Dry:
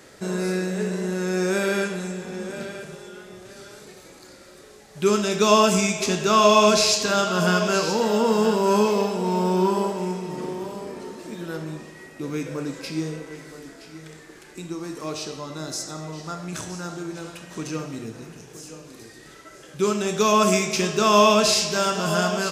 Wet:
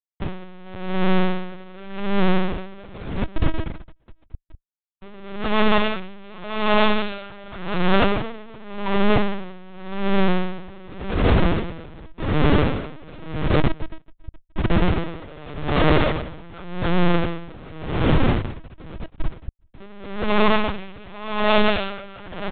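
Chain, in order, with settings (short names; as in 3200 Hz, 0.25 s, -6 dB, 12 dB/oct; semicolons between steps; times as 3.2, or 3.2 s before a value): dynamic EQ 200 Hz, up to +6 dB, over -39 dBFS, Q 6; in parallel at +3 dB: compressor 12:1, threshold -31 dBFS, peak gain reduction 20.5 dB; on the sum: non-linear reverb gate 0.32 s rising, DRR -5 dB; Schmitt trigger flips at -20 dBFS; echo 0.416 s -23.5 dB; LPC vocoder at 8 kHz pitch kept; dB-linear tremolo 0.88 Hz, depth 25 dB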